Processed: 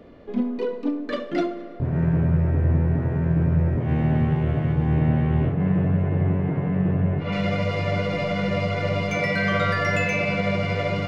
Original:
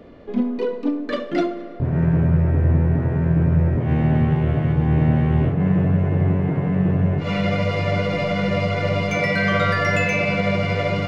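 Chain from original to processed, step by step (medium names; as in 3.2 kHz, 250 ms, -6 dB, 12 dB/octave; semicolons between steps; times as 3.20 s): 4.99–7.31 s: low-pass 5.2 kHz -> 3.3 kHz 12 dB/octave; trim -3 dB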